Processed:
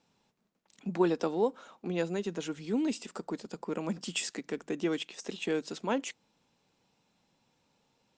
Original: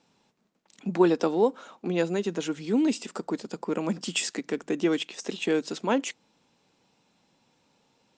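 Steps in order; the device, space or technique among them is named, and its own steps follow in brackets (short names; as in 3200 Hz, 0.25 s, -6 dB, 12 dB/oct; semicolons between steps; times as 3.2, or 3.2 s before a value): low shelf boost with a cut just above (low shelf 89 Hz +7 dB; bell 290 Hz -2 dB); gain -5.5 dB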